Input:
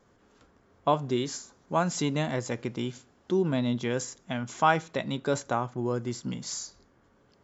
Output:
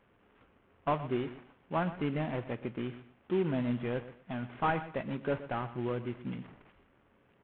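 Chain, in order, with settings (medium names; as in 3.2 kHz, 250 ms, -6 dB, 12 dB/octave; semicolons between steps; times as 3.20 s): CVSD coder 16 kbps; feedback delay 122 ms, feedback 23%, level -14.5 dB; trim -4 dB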